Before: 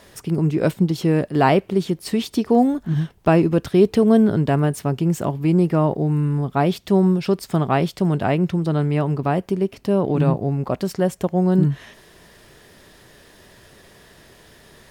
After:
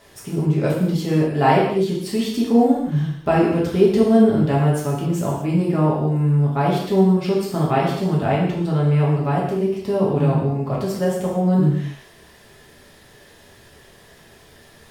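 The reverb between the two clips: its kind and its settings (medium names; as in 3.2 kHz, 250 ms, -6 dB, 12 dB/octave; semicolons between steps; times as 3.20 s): gated-style reverb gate 290 ms falling, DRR -5.5 dB; trim -6 dB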